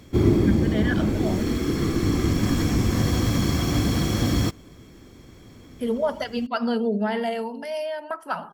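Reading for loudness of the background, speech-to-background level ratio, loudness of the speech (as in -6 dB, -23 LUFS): -23.0 LUFS, -5.0 dB, -28.0 LUFS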